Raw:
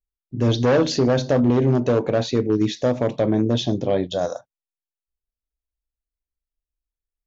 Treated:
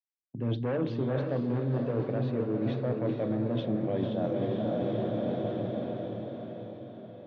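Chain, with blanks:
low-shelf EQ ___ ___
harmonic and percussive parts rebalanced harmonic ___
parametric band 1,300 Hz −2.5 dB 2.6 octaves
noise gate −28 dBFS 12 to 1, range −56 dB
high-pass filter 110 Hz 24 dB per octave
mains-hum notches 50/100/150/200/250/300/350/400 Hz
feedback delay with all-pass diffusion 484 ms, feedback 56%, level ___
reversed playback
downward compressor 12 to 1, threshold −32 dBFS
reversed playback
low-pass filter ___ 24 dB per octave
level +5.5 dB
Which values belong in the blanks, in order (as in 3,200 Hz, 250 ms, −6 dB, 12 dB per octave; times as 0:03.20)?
240 Hz, +8 dB, −3 dB, −5 dB, 2,800 Hz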